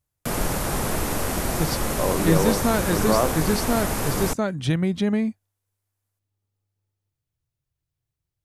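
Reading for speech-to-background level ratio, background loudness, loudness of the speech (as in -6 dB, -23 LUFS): 2.0 dB, -26.0 LUFS, -24.0 LUFS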